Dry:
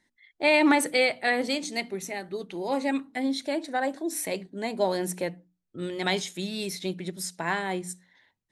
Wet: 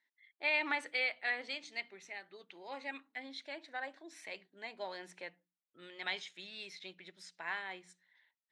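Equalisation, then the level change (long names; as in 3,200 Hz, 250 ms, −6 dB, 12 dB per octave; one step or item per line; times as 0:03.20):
resonant band-pass 2,400 Hz, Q 0.9
high-frequency loss of the air 72 metres
−6.5 dB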